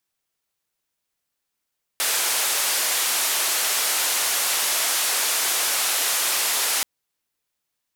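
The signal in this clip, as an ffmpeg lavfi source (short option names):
-f lavfi -i "anoisesrc=c=white:d=4.83:r=44100:seed=1,highpass=f=540,lowpass=f=13000,volume=-15.2dB"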